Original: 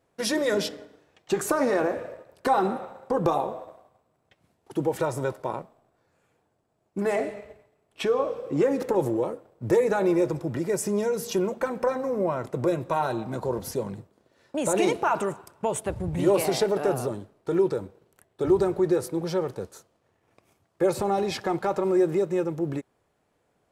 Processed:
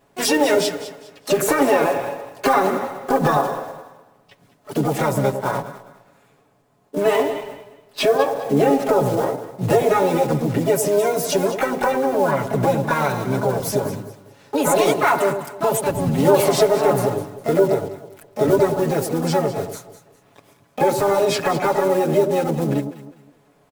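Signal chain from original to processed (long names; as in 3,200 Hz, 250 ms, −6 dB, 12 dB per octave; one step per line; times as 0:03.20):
one scale factor per block 5 bits
comb filter 7.1 ms, depth 93%
in parallel at +2.5 dB: downward compressor 16 to 1, threshold −29 dBFS, peak gain reduction 17 dB
on the sum: pitch-shifted copies added +7 semitones −4 dB
delay that swaps between a low-pass and a high-pass 102 ms, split 920 Hz, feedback 54%, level −8 dB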